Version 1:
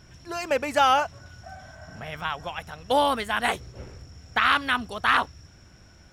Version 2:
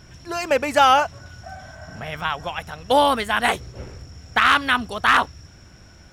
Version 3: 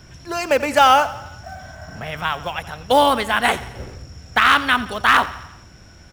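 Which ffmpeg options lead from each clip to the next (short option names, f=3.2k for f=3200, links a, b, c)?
-af "asoftclip=type=hard:threshold=-10.5dB,volume=5dB"
-filter_complex "[0:a]acrossover=split=310|1500|3100[a][b][c][d];[b]acrusher=bits=6:mode=log:mix=0:aa=0.000001[e];[a][e][c][d]amix=inputs=4:normalize=0,aecho=1:1:87|174|261|348|435:0.15|0.0808|0.0436|0.0236|0.0127,volume=2dB"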